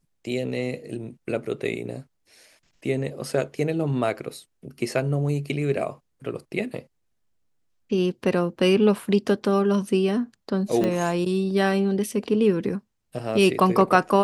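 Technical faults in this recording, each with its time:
10.84 pop -13 dBFS

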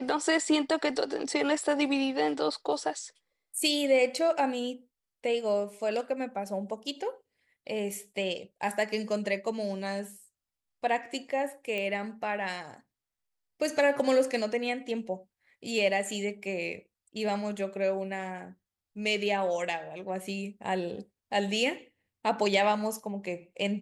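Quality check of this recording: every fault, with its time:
11.78 pop -21 dBFS

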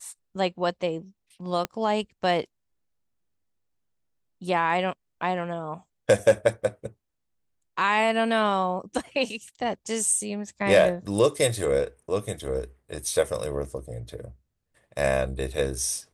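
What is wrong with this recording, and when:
1.65 pop -13 dBFS

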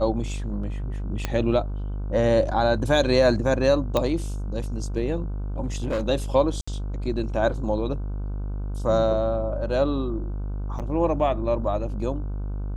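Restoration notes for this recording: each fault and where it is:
buzz 50 Hz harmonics 31 -29 dBFS
1.25 pop -11 dBFS
3.97 pop -10 dBFS
5.64–6.07 clipped -21 dBFS
6.61–6.67 gap 65 ms
10.79–10.8 gap 7.3 ms

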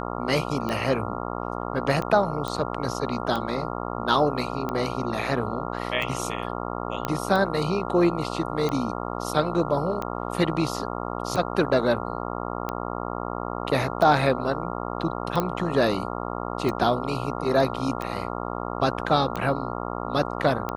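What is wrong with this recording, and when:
buzz 60 Hz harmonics 23 -31 dBFS
tick 45 rpm -16 dBFS
2.48 pop -17 dBFS
7.05 pop -11 dBFS
15.4 pop -11 dBFS

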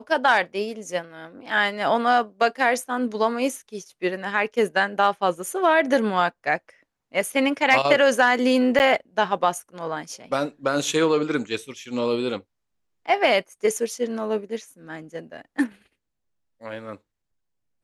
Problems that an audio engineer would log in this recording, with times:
5.46 gap 2.7 ms
8.79–8.8 gap 9.3 ms

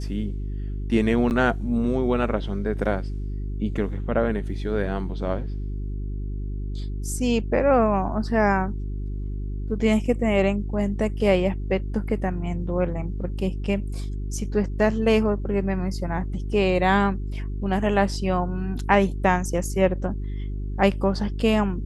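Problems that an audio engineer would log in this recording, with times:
hum 50 Hz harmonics 8 -29 dBFS
1.3–1.31 gap 9.4 ms

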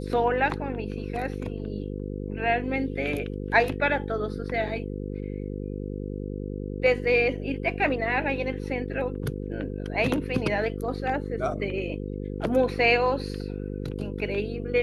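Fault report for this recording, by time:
buzz 50 Hz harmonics 10 -33 dBFS

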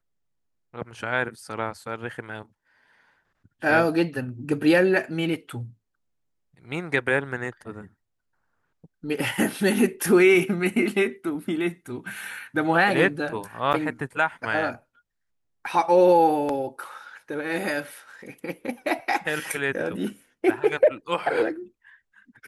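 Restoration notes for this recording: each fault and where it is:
13.73–13.74 gap 8.2 ms

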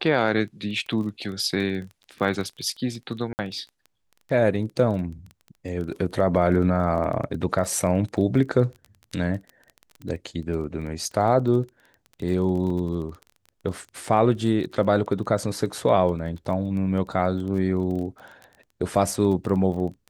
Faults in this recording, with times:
crackle 20/s -32 dBFS
3.33–3.39 gap 59 ms
12.7 gap 3.7 ms

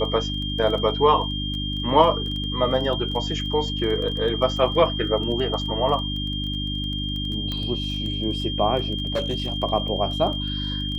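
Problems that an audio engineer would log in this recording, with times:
crackle 15/s -30 dBFS
hum 50 Hz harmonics 6 -29 dBFS
tone 3200 Hz -29 dBFS
7.52 pop -16 dBFS
9.14–9.58 clipped -19.5 dBFS

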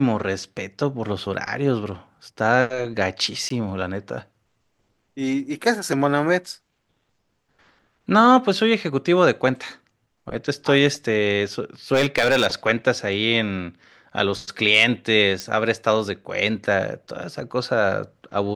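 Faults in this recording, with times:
3.49–3.5 gap 14 ms
11.93–12.47 clipped -13 dBFS
15.4 pop -13 dBFS

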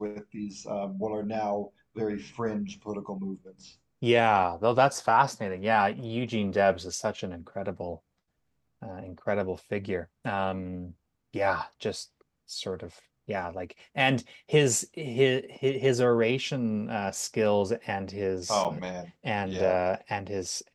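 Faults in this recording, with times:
18.64–18.65 gap 7.9 ms

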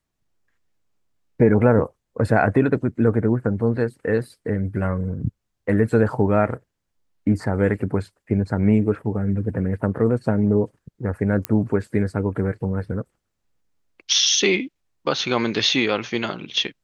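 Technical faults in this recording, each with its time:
11.45 pop -7 dBFS

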